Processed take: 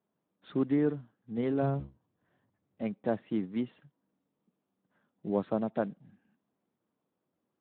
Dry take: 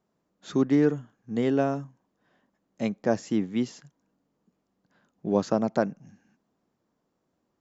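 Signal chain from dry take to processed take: 1.62–2.82 octaver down 1 oct, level +3 dB; gain -6.5 dB; Speex 11 kbps 8000 Hz

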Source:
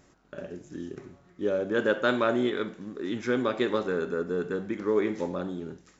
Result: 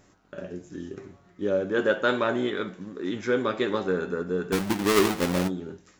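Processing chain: 4.52–5.48 half-waves squared off; flange 0.85 Hz, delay 9.7 ms, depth 1.5 ms, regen +48%; gain +5.5 dB

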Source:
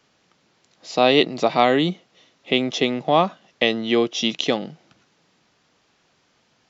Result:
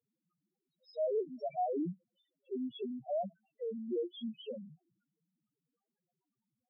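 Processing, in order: loudest bins only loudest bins 1; gain -8.5 dB

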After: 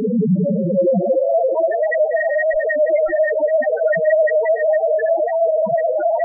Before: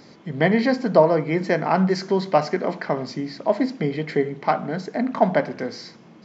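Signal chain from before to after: spectral trails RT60 2.93 s; soft clip -0.5 dBFS, distortion -27 dB; Paulstretch 42×, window 0.05 s, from 0.94; wavefolder -11.5 dBFS; loudest bins only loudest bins 2; gain +8 dB

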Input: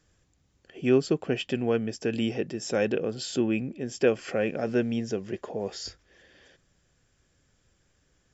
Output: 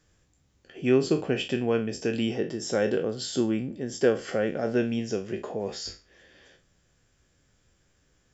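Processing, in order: spectral trails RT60 0.31 s; 2.35–4.77 notch 2500 Hz, Q 5.2

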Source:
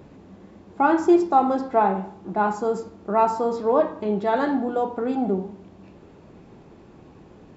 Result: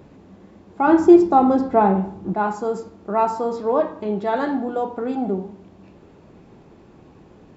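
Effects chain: 0.87–2.34 low shelf 400 Hz +11 dB

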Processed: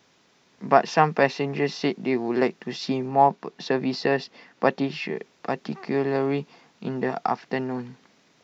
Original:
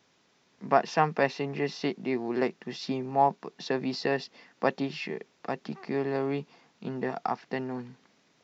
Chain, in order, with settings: 3.08–5.16 high shelf 6500 Hz -7.5 dB; gain +5.5 dB

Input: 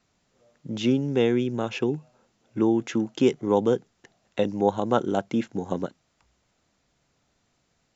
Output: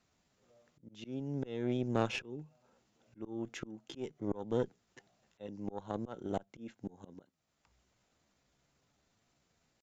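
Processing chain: tempo 0.81×; auto swell 0.569 s; tube stage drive 19 dB, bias 0.8

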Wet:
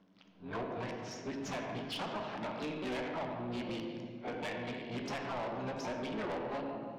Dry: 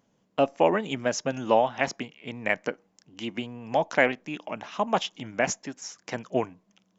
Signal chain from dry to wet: whole clip reversed; compressor 8:1, threshold -33 dBFS, peak gain reduction 18 dB; on a send at -4 dB: reverb RT60 1.9 s, pre-delay 15 ms; on the sum: harmoniser +7 st -5 dB; Bessel low-pass 3300 Hz, order 8; soft clip -35.5 dBFS, distortion -9 dB; gain +1.5 dB

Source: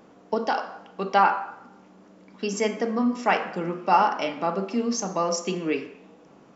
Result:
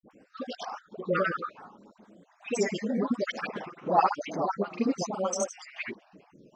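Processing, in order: random spectral dropouts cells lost 57%; grains 0.1 s, pitch spread up and down by 3 st; dispersion highs, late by 77 ms, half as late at 830 Hz

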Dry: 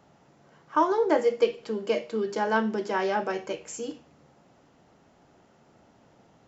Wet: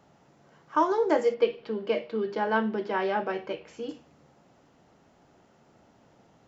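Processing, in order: 1.34–3.89 LPF 4100 Hz 24 dB/oct; gain -1 dB

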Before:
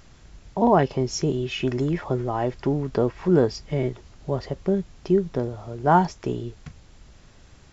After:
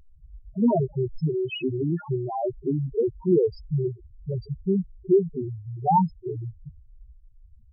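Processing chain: tracing distortion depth 0.073 ms; loudest bins only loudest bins 2; gain +3.5 dB

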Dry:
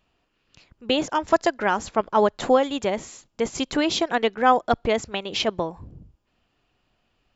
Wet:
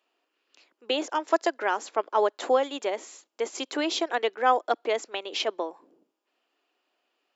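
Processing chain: steep high-pass 300 Hz 36 dB/oct; gain -4 dB

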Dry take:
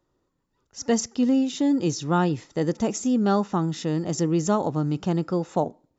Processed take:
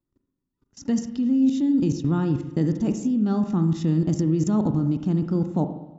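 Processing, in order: resonant low shelf 370 Hz +9.5 dB, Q 1.5; level quantiser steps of 21 dB; on a send: reverb RT60 1.1 s, pre-delay 37 ms, DRR 7.5 dB

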